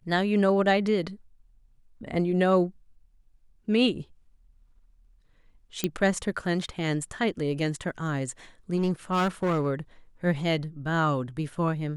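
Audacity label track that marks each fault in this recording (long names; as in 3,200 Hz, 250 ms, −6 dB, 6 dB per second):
5.840000	5.840000	click −11 dBFS
8.760000	9.670000	clipping −21 dBFS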